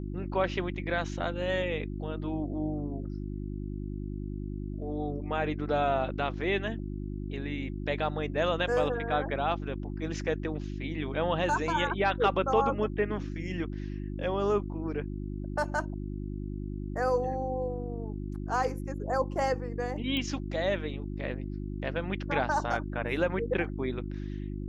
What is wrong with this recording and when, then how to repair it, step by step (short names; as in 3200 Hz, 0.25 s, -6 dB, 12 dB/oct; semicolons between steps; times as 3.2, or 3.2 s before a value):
hum 50 Hz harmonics 7 -36 dBFS
20.17 pop -20 dBFS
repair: de-click; de-hum 50 Hz, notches 7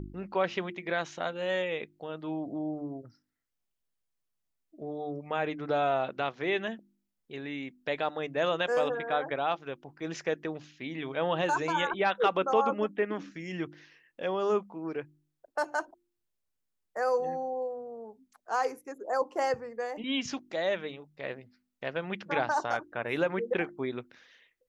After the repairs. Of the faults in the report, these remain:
none